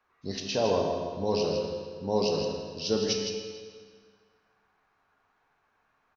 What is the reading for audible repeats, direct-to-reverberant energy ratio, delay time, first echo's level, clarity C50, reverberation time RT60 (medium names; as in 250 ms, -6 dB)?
1, 0.0 dB, 161 ms, -7.5 dB, 1.5 dB, 1.8 s